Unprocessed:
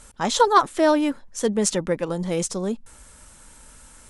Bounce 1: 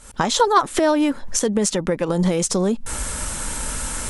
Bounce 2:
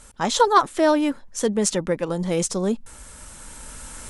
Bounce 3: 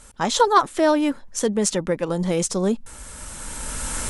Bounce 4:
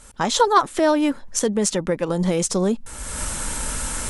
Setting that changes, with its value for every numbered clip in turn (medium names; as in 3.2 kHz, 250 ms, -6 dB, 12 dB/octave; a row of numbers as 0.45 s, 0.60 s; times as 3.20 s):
recorder AGC, rising by: 82 dB/s, 5.2 dB/s, 13 dB/s, 33 dB/s